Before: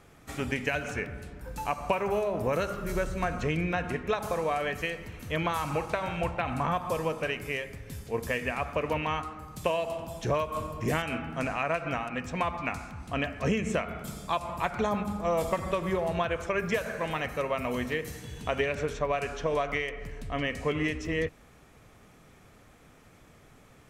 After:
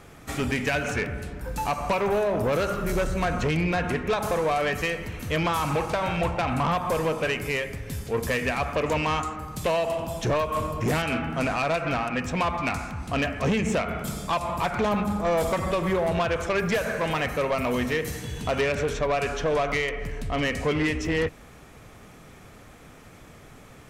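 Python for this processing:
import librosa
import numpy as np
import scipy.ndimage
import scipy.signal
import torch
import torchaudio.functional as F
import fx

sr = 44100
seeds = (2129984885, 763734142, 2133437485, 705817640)

y = fx.peak_eq(x, sr, hz=7100.0, db=14.0, octaves=0.35, at=(8.86, 9.36))
y = 10.0 ** (-27.0 / 20.0) * np.tanh(y / 10.0 ** (-27.0 / 20.0))
y = y * 10.0 ** (8.0 / 20.0)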